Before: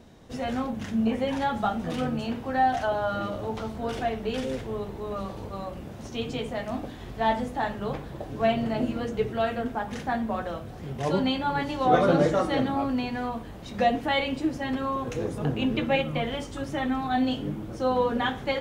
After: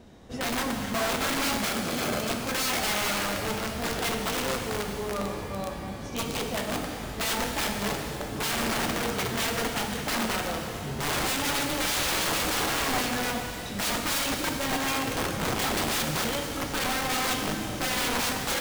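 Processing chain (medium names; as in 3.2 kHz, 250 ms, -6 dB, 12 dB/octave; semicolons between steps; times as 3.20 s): integer overflow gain 24 dB; 1.65–2.30 s: comb of notches 940 Hz; pitch-shifted reverb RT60 2.5 s, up +12 st, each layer -8 dB, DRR 3 dB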